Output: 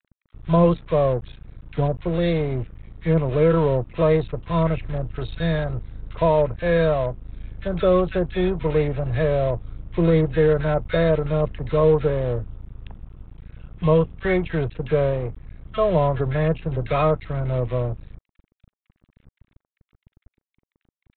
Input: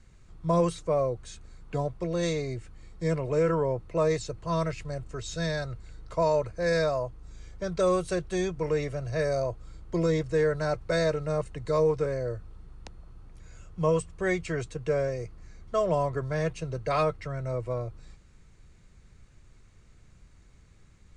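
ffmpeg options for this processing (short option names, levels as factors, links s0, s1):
-filter_complex "[0:a]lowshelf=f=140:g=8.5,aresample=8000,aeval=exprs='sgn(val(0))*max(abs(val(0))-0.00944,0)':c=same,aresample=44100,acrossover=split=1500[s0][s1];[s0]adelay=40[s2];[s2][s1]amix=inputs=2:normalize=0,volume=2.24"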